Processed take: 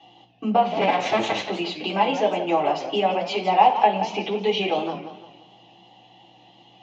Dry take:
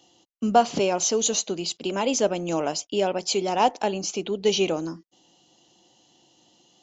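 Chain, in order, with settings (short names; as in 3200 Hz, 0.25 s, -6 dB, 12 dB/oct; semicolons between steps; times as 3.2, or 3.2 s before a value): 0.81–1.48 cycle switcher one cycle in 2, inverted; compressor 2.5:1, threshold -29 dBFS, peak gain reduction 11.5 dB; hum 60 Hz, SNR 31 dB; speaker cabinet 150–3300 Hz, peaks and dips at 320 Hz -7 dB, 460 Hz +3 dB, 780 Hz +10 dB, 1500 Hz -6 dB; reverb RT60 0.50 s, pre-delay 3 ms, DRR -3 dB; warbling echo 0.172 s, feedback 39%, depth 183 cents, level -11 dB; gain +6 dB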